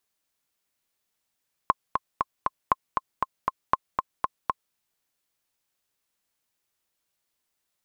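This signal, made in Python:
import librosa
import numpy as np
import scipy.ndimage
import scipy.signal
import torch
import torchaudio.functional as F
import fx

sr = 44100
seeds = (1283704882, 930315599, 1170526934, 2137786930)

y = fx.click_track(sr, bpm=236, beats=4, bars=3, hz=1060.0, accent_db=4.5, level_db=-5.5)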